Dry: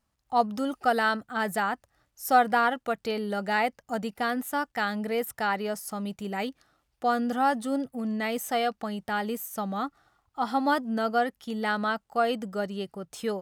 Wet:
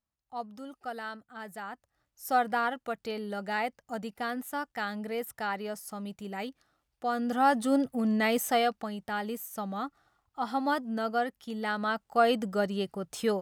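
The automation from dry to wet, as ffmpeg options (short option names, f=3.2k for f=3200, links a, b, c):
-af "volume=9dB,afade=t=in:st=1.57:d=0.79:silence=0.375837,afade=t=in:st=7.11:d=0.61:silence=0.375837,afade=t=out:st=8.38:d=0.53:silence=0.446684,afade=t=in:st=11.78:d=0.5:silence=0.501187"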